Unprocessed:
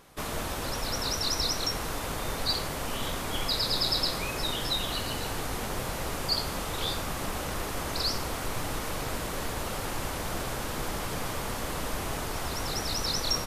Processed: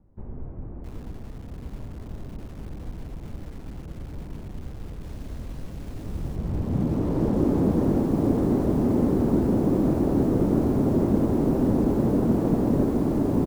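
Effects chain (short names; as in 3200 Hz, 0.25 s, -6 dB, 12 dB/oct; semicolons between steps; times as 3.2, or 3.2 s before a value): outdoor echo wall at 77 m, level -17 dB; in parallel at +2.5 dB: limiter -24 dBFS, peak gain reduction 9.5 dB; on the sum: low-pass sweep 190 Hz -> 500 Hz, 5.82–7.17; mistuned SSB -220 Hz 270–2800 Hz; 5.03–6.36 requantised 10-bit, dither none; on a send: feedback echo 83 ms, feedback 39%, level -13 dB; on the sum: lo-fi delay 0.665 s, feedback 55%, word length 8-bit, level -7.5 dB; gain +5.5 dB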